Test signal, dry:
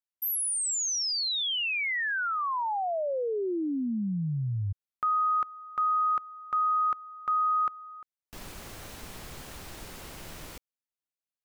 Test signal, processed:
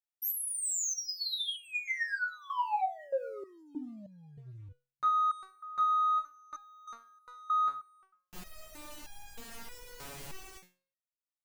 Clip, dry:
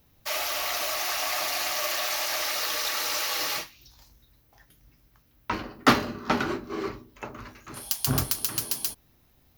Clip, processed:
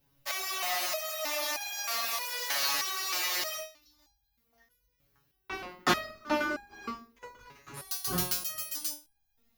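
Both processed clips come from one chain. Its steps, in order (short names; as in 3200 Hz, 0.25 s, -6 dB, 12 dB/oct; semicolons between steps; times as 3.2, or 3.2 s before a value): de-hum 134.8 Hz, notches 37; sample leveller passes 1; stepped resonator 3.2 Hz 140–810 Hz; gain +6.5 dB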